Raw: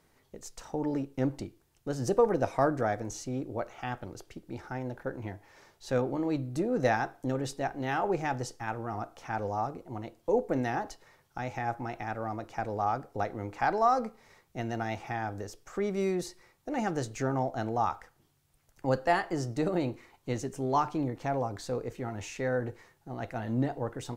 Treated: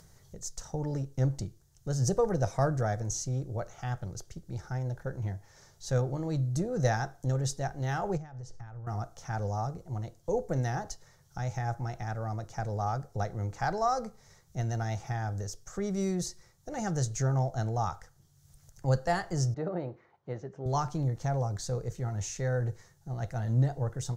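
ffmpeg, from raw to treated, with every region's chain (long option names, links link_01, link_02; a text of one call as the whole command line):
ffmpeg -i in.wav -filter_complex "[0:a]asettb=1/sr,asplit=3[link_01][link_02][link_03];[link_01]atrim=end=8.174[link_04];[link_02]atrim=start=8.17:end=8.87,asetpts=PTS-STARTPTS,afade=type=in:duration=0.004:curve=qsin,afade=type=out:start_time=0.696:duration=0.004:curve=qsin,asubboost=boost=9.5:cutoff=130,acompressor=threshold=-42dB:ratio=20:attack=3.2:release=140:knee=1:detection=peak,lowpass=frequency=2100:poles=1[link_05];[link_03]atrim=start=8.866[link_06];[link_04][link_05]acrossfade=duration=0.004:curve1=hsin:curve2=qsin[link_07];[link_07][link_06]acrossfade=duration=0.004:curve1=qsin:curve2=hsin,asettb=1/sr,asplit=3[link_08][link_09][link_10];[link_08]atrim=end=19.544[link_11];[link_09]atrim=start=19.54:end=20.66,asetpts=PTS-STARTPTS,afade=type=in:duration=0.004:curve=qsin,afade=type=out:start_time=1.116:duration=0.004:curve=qsin,highpass=400,lowpass=2100,aemphasis=mode=reproduction:type=bsi[link_12];[link_10]atrim=start=20.656[link_13];[link_11][link_12]acrossfade=duration=0.004:curve1=hsin:curve2=qsin[link_14];[link_14][link_13]acrossfade=duration=0.004:curve1=qsin:curve2=hsin,equalizer=frequency=250:width_type=o:width=0.67:gain=-10,equalizer=frequency=1000:width_type=o:width=0.67:gain=-5,equalizer=frequency=2500:width_type=o:width=0.67:gain=-10,equalizer=frequency=6300:width_type=o:width=0.67:gain=9,acompressor=mode=upward:threshold=-54dB:ratio=2.5,lowshelf=frequency=230:width_type=q:width=1.5:gain=7.5" out.wav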